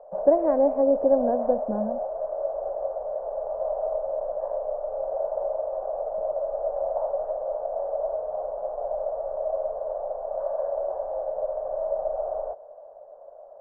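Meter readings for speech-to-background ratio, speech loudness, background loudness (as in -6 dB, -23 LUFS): 6.0 dB, -23.5 LUFS, -29.5 LUFS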